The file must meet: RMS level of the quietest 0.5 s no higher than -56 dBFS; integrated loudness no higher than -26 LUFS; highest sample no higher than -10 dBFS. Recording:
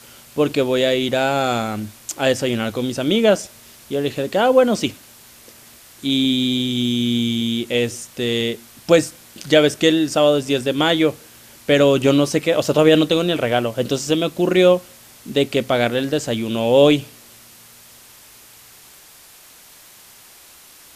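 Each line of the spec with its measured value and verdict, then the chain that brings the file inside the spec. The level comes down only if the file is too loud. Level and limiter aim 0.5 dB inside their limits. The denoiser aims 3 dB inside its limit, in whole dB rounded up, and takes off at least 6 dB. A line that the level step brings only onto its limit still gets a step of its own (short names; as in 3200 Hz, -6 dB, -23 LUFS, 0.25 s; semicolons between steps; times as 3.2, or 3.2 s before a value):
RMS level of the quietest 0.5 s -46 dBFS: fail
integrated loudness -18.0 LUFS: fail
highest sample -1.5 dBFS: fail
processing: denoiser 6 dB, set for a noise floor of -46 dBFS; gain -8.5 dB; limiter -10.5 dBFS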